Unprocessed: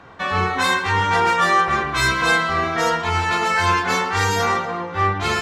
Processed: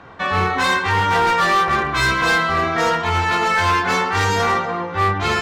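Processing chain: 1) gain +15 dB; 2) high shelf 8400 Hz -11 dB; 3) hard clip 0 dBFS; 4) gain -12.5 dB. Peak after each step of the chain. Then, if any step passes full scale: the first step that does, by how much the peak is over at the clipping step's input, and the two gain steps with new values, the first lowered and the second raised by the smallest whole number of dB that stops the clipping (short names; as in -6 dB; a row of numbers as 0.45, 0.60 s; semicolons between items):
+9.0, +8.5, 0.0, -12.5 dBFS; step 1, 8.5 dB; step 1 +6 dB, step 4 -3.5 dB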